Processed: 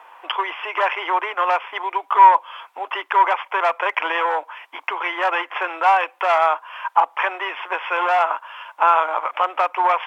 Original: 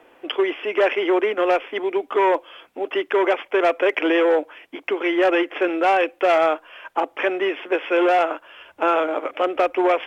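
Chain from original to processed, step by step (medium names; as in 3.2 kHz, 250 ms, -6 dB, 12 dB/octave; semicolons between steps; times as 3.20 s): in parallel at +1 dB: compression, threshold -28 dBFS, peak gain reduction 13.5 dB; on the sum: resonant high-pass 970 Hz, resonance Q 4.9; trim -3.5 dB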